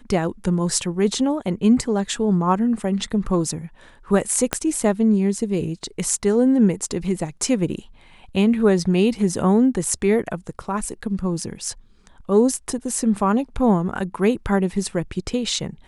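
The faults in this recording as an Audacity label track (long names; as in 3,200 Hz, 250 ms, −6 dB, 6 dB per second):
4.530000	4.530000	click −3 dBFS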